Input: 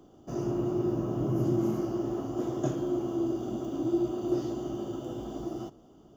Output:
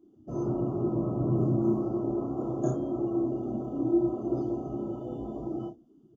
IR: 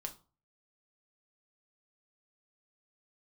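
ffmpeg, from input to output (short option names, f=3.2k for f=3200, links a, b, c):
-filter_complex "[0:a]asplit=2[a][b];[b]aecho=0:1:32|61:0.631|0.335[c];[a][c]amix=inputs=2:normalize=0,afftdn=nr=20:nf=-43,adynamicequalizer=threshold=0.00178:dfrequency=2400:dqfactor=1.1:tfrequency=2400:tqfactor=1.1:attack=5:release=100:ratio=0.375:range=3:mode=cutabove:tftype=bell"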